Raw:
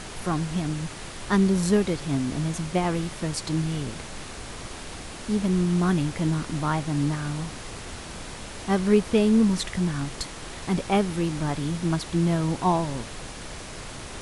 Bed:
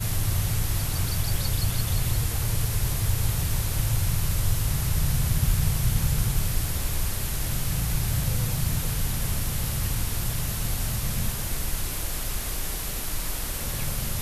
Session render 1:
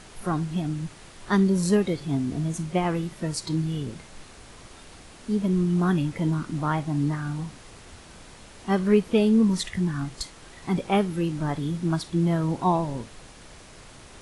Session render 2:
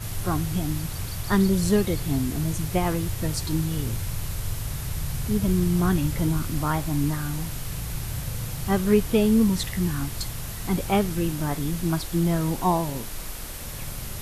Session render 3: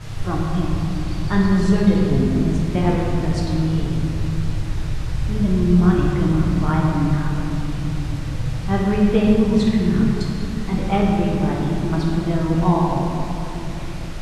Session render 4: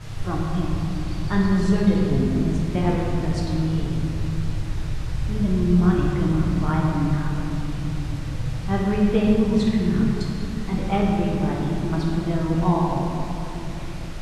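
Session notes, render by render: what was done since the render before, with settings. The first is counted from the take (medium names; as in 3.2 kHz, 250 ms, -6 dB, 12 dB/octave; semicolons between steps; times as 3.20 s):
noise print and reduce 9 dB
add bed -5.5 dB
distance through air 100 m; simulated room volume 150 m³, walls hard, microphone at 0.59 m
trim -3 dB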